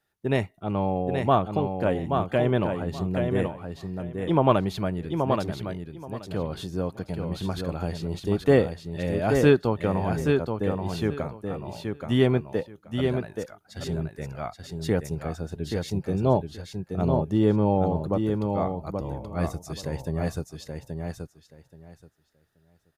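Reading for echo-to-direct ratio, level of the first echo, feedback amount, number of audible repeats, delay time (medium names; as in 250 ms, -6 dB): -5.0 dB, -5.0 dB, 18%, 3, 828 ms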